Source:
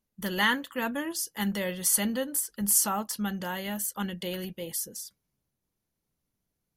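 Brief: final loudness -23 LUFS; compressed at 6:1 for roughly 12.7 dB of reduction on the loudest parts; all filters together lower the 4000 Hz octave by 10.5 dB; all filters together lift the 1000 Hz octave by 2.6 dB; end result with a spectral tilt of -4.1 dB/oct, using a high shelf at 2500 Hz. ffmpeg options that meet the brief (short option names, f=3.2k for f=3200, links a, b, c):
-af "equalizer=f=1k:t=o:g=5,highshelf=f=2.5k:g=-8.5,equalizer=f=4k:t=o:g=-8.5,acompressor=threshold=-35dB:ratio=6,volume=16dB"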